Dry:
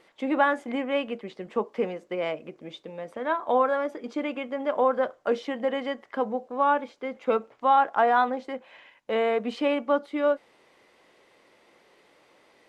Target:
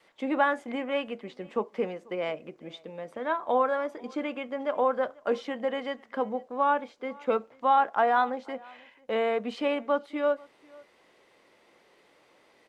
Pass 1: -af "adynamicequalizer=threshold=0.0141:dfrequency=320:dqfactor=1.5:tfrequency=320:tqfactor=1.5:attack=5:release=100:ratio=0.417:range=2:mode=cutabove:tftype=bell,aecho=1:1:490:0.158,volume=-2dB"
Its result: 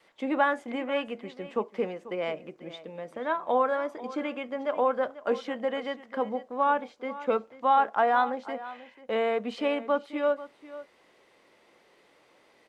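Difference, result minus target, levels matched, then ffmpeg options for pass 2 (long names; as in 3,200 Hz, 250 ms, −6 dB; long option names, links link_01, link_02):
echo-to-direct +9 dB
-af "adynamicequalizer=threshold=0.0141:dfrequency=320:dqfactor=1.5:tfrequency=320:tqfactor=1.5:attack=5:release=100:ratio=0.417:range=2:mode=cutabove:tftype=bell,aecho=1:1:490:0.0562,volume=-2dB"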